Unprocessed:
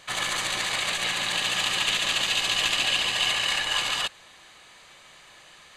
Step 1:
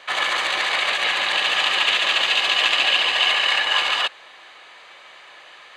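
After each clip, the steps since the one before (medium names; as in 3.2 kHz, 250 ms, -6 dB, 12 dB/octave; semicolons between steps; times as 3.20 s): three-band isolator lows -20 dB, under 350 Hz, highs -16 dB, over 4 kHz; trim +8 dB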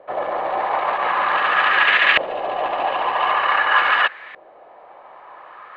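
LFO low-pass saw up 0.46 Hz 560–2000 Hz; trim +3.5 dB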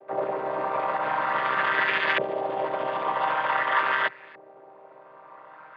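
vocoder on a held chord minor triad, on C3; trim -6 dB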